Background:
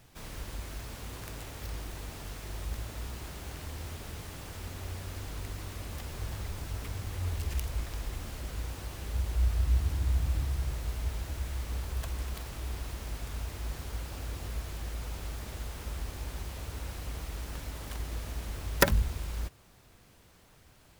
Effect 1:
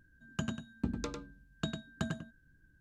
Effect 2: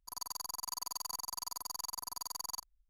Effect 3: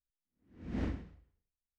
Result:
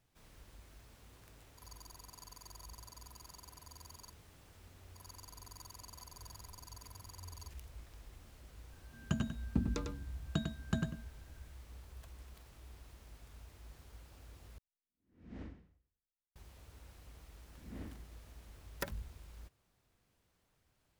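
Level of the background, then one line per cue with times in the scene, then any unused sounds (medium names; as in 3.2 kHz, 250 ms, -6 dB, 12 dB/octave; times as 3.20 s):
background -17.5 dB
1.50 s: add 2 -14.5 dB
4.88 s: add 2 -13.5 dB
8.72 s: add 1 -2.5 dB + bass shelf 160 Hz +9 dB
14.58 s: replace with 3 -12.5 dB
16.98 s: add 3 -11.5 dB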